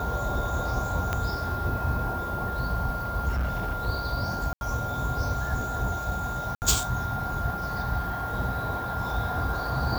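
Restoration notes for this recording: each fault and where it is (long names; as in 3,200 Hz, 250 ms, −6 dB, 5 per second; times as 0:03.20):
whistle 1,400 Hz −32 dBFS
0:01.13: click −12 dBFS
0:03.28–0:03.87: clipping −23.5 dBFS
0:04.53–0:04.61: drop-out 81 ms
0:06.55–0:06.62: drop-out 69 ms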